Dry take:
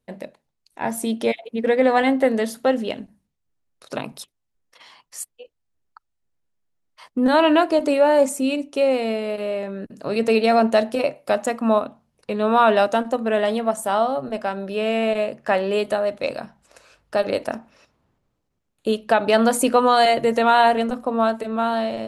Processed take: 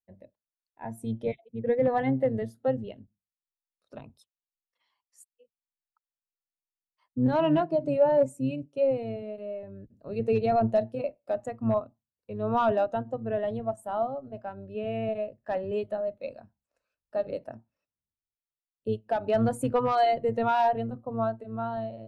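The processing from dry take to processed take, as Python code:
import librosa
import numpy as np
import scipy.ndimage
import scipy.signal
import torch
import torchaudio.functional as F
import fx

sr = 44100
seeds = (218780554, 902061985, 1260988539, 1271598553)

y = fx.octave_divider(x, sr, octaves=1, level_db=-2.0)
y = 10.0 ** (-8.5 / 20.0) * (np.abs((y / 10.0 ** (-8.5 / 20.0) + 3.0) % 4.0 - 2.0) - 1.0)
y = fx.spectral_expand(y, sr, expansion=1.5)
y = F.gain(torch.from_numpy(y), -4.5).numpy()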